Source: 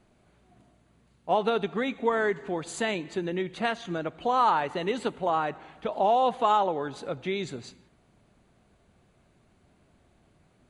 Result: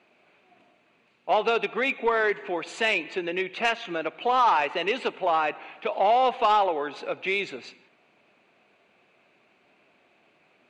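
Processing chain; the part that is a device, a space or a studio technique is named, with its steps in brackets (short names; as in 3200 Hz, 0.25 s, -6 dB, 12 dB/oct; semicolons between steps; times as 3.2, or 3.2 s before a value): intercom (BPF 370–4400 Hz; bell 2500 Hz +12 dB 0.4 oct; soft clip -17 dBFS, distortion -17 dB); gain +4 dB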